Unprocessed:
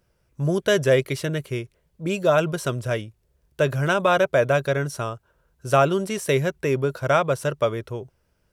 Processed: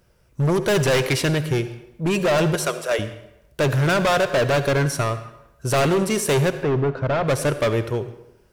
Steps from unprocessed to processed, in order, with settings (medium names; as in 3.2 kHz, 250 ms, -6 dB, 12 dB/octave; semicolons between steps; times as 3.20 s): 0.74–1.35 s: dynamic bell 2.4 kHz, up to +7 dB, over -36 dBFS, Q 0.73; 2.55–2.99 s: high-pass 440 Hz 24 dB/octave; overload inside the chain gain 24 dB; 6.50–7.26 s: tape spacing loss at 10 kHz 32 dB; reverberation RT60 0.90 s, pre-delay 60 ms, DRR 11.5 dB; trim +7.5 dB